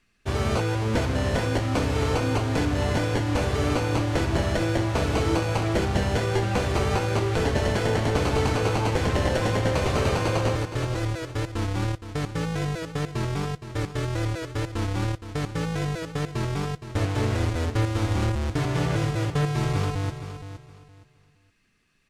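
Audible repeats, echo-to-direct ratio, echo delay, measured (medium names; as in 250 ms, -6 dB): 2, -10.5 dB, 467 ms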